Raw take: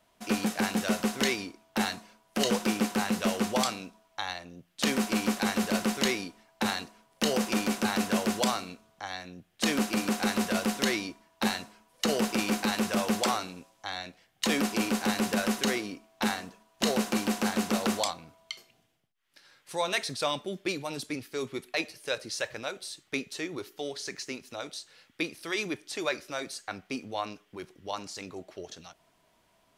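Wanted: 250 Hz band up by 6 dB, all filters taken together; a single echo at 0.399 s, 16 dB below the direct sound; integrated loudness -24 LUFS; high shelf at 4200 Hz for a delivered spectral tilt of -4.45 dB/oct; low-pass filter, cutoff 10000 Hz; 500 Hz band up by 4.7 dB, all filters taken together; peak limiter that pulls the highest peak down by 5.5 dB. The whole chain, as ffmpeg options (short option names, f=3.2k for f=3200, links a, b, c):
-af "lowpass=10k,equalizer=f=250:t=o:g=6.5,equalizer=f=500:t=o:g=4,highshelf=f=4.2k:g=-9,alimiter=limit=-15.5dB:level=0:latency=1,aecho=1:1:399:0.158,volume=5dB"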